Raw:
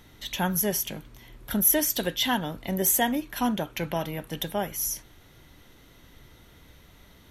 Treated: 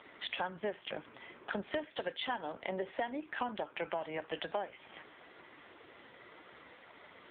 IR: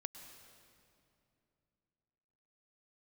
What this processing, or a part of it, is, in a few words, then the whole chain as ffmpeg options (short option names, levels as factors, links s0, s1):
voicemail: -af "highpass=440,lowpass=2600,acompressor=threshold=0.00891:ratio=12,volume=2.82" -ar 8000 -c:a libopencore_amrnb -b:a 5900